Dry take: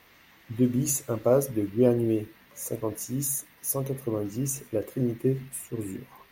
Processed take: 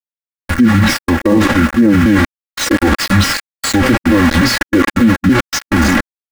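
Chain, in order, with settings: repeated pitch sweeps -6.5 st, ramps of 0.294 s; treble ducked by the level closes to 2300 Hz, closed at -22 dBFS; sample gate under -36.5 dBFS; bell 2000 Hz +12.5 dB 1.2 oct; reverse; compressor 8:1, threshold -37 dBFS, peak gain reduction 21 dB; reverse; formant shift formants -3 st; comb 3.6 ms, depth 93%; maximiser +34.5 dB; slew limiter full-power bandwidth 1200 Hz; gain -1.5 dB

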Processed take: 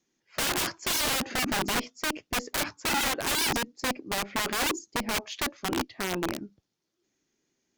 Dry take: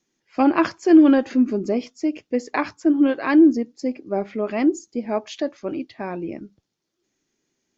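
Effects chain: wrapped overs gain 21.5 dB; added harmonics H 3 -21 dB, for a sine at -21.5 dBFS

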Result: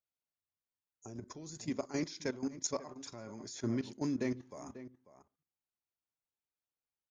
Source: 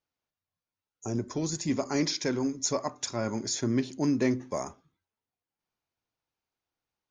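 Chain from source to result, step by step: outdoor echo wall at 93 m, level -14 dB; level quantiser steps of 14 dB; gain -5 dB

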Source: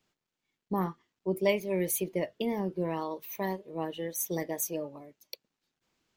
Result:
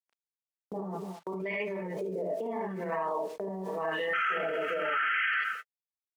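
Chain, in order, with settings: painted sound noise, 4.13–5.34, 1200–3300 Hz -24 dBFS; echo 0.216 s -21 dB; LFO low-pass sine 0.82 Hz 480–1900 Hz; comb 4.5 ms, depth 69%; non-linear reverb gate 0.11 s rising, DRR -5 dB; bit-crush 10-bit; gate -37 dBFS, range -49 dB; limiter -29.5 dBFS, peak gain reduction 28.5 dB; weighting filter A; backwards sustainer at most 62 dB/s; gain +7 dB

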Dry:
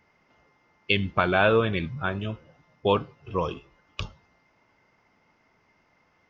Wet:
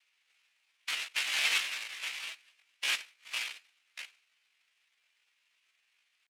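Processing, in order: noise vocoder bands 1; band-pass 1700 Hz, Q 2.6; pitch shift +6.5 st

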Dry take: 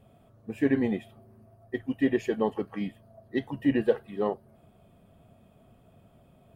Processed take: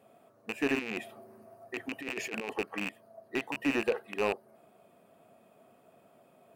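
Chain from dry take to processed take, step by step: rattling part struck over -38 dBFS, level -17 dBFS; HPF 350 Hz 12 dB/oct; bell 3300 Hz -6.5 dB 0.31 oct; limiter -20.5 dBFS, peak gain reduction 9.5 dB; 0.79–2.53 negative-ratio compressor -36 dBFS, ratio -0.5; slew limiter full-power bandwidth 71 Hz; gain +2.5 dB

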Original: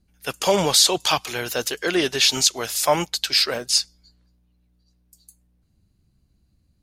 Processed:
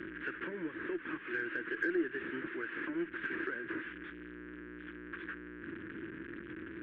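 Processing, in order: delta modulation 16 kbps, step -29 dBFS; compressor 6:1, threshold -30 dBFS, peak gain reduction 12.5 dB; double band-pass 730 Hz, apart 2.3 oct; added harmonics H 6 -37 dB, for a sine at -27 dBFS; gain +5 dB

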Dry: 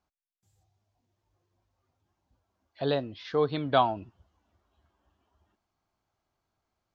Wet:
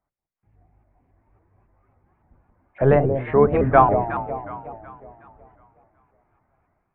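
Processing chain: octaver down 1 oct, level -2 dB; elliptic low-pass 2200 Hz, stop band 50 dB; de-hum 58.2 Hz, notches 11; AGC gain up to 13.5 dB; echo with dull and thin repeats by turns 0.184 s, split 820 Hz, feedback 65%, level -7 dB; shaped vibrato saw up 3.6 Hz, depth 160 cents

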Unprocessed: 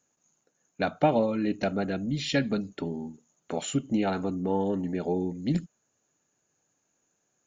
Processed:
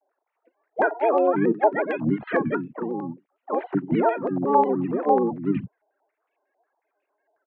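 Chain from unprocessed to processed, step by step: sine-wave speech; bell 650 Hz +7 dB 1.2 oct; limiter -18 dBFS, peak gain reduction 9 dB; harmoniser -12 st -11 dB, -7 st -4 dB, +5 st -7 dB; wow and flutter 16 cents; stepped low-pass 11 Hz 760–2600 Hz

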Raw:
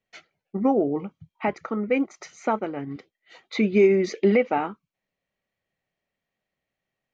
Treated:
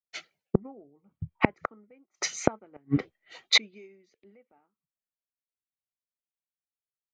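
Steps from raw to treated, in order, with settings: flipped gate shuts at -22 dBFS, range -35 dB; three-band expander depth 100%; gain +8.5 dB

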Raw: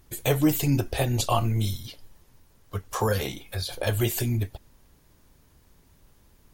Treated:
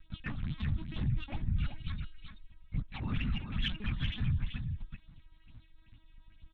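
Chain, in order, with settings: formant shift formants -5 st; reverse; compressor 4:1, threshold -33 dBFS, peak gain reduction 14.5 dB; reverse; harmoniser -12 st -2 dB, -4 st -16 dB; phaser stages 6, 2.2 Hz, lowest notch 130–3000 Hz; LPC vocoder at 8 kHz pitch kept; limiter -28.5 dBFS, peak gain reduction 9.5 dB; high shelf 2400 Hz -9.5 dB; on a send: echo 0.383 s -7 dB; on the sum: added harmonics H 5 -26 dB, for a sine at -23.5 dBFS; EQ curve 220 Hz 0 dB, 420 Hz -21 dB, 2600 Hz +5 dB; gain +4.5 dB

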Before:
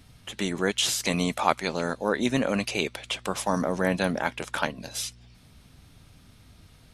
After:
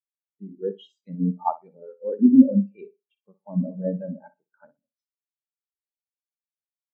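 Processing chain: Wiener smoothing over 9 samples; flutter echo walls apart 10.4 m, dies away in 0.74 s; spectral expander 4:1; gain +1.5 dB

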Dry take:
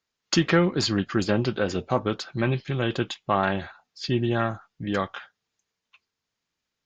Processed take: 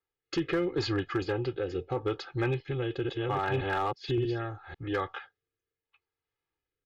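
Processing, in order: 2.47–4.88 reverse delay 0.568 s, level -1 dB; LPF 3400 Hz 12 dB/oct; bell 220 Hz -8 dB 0.21 oct; comb 2.4 ms, depth 87%; compressor 2:1, threshold -23 dBFS, peak gain reduction 6 dB; rotary speaker horn 0.75 Hz; hard clip -18.5 dBFS, distortion -22 dB; mismatched tape noise reduction decoder only; gain -3 dB

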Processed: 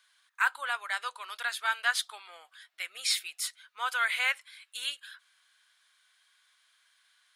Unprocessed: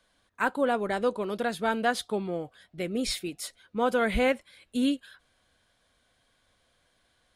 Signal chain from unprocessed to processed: HPF 1200 Hz 24 dB/oct; gain +4 dB

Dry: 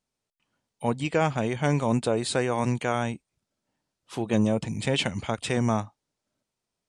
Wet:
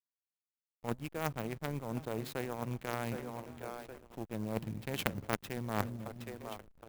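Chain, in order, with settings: split-band echo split 340 Hz, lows 0.275 s, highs 0.767 s, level -13.5 dB; reverse; compressor 8:1, threshold -33 dBFS, peak gain reduction 15 dB; reverse; added harmonics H 3 -8 dB, 5 -22 dB, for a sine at -20.5 dBFS; backlash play -51.5 dBFS; clock jitter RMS 0.032 ms; gain +11.5 dB

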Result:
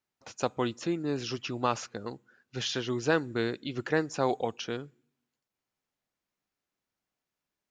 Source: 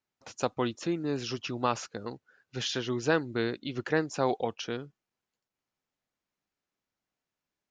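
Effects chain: on a send at -23.5 dB: careless resampling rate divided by 6×, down none, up zero stuff + reverb RT60 0.70 s, pre-delay 3 ms

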